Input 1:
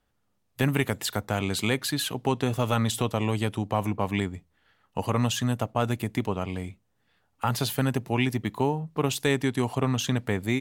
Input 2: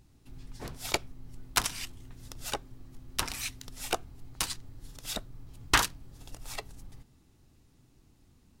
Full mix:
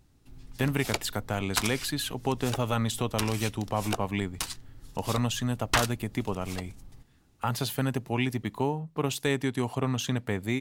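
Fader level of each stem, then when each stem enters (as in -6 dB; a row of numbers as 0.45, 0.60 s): -3.0, -1.5 dB; 0.00, 0.00 s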